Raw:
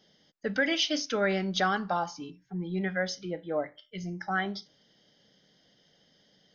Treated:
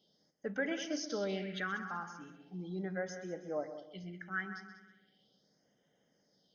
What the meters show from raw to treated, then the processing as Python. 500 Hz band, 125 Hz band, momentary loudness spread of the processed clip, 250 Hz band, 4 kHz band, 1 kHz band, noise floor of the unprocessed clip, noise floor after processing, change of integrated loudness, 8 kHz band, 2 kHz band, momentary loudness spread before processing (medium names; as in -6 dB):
-7.5 dB, -9.0 dB, 12 LU, -8.0 dB, -14.5 dB, -12.5 dB, -66 dBFS, -76 dBFS, -9.0 dB, no reading, -8.5 dB, 12 LU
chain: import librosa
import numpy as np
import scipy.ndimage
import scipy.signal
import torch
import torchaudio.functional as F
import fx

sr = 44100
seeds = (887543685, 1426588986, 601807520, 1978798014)

p1 = x + fx.echo_heads(x, sr, ms=64, heads='second and third', feedback_pct=42, wet_db=-12.0, dry=0)
p2 = fx.phaser_stages(p1, sr, stages=4, low_hz=600.0, high_hz=4300.0, hz=0.38, feedback_pct=25)
p3 = fx.low_shelf(p2, sr, hz=110.0, db=-11.0)
y = p3 * librosa.db_to_amplitude(-7.0)